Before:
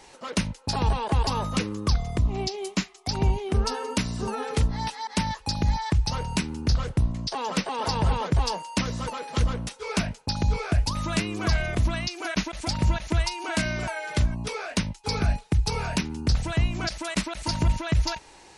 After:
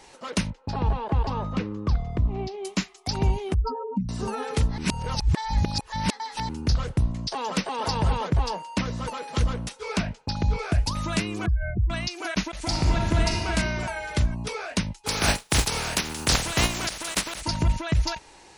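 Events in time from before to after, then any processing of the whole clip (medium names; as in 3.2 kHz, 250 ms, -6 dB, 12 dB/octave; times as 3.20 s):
0.50–2.65 s: tape spacing loss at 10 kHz 27 dB
3.54–4.09 s: spectral contrast enhancement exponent 3.4
4.78–6.49 s: reverse
8.29–9.04 s: treble shelf 4 kHz -> 5.7 kHz -9 dB
9.97–10.59 s: distance through air 84 m
11.46–11.90 s: spectral contrast enhancement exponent 3.2
12.59–13.46 s: reverb throw, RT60 1.7 s, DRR -1 dB
15.06–17.40 s: spectral contrast reduction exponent 0.4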